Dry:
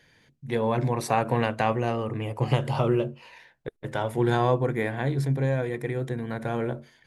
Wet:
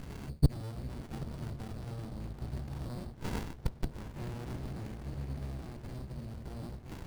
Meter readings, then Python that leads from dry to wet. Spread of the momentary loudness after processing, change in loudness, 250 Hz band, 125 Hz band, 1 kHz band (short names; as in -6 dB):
10 LU, -13.0 dB, -12.0 dB, -9.5 dB, -21.5 dB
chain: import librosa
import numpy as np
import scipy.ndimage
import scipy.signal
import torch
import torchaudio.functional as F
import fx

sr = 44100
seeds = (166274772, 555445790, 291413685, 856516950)

p1 = fx.octave_divider(x, sr, octaves=1, level_db=2.0)
p2 = fx.over_compress(p1, sr, threshold_db=-27.0, ratio=-1.0)
p3 = p1 + F.gain(torch.from_numpy(p2), -2.5).numpy()
p4 = fx.sample_hold(p3, sr, seeds[0], rate_hz=4500.0, jitter_pct=0)
p5 = fx.gate_flip(p4, sr, shuts_db=-22.0, range_db=-31)
p6 = p5 + fx.echo_diffused(p5, sr, ms=908, feedback_pct=41, wet_db=-12, dry=0)
p7 = fx.running_max(p6, sr, window=65)
y = F.gain(torch.from_numpy(p7), 12.0).numpy()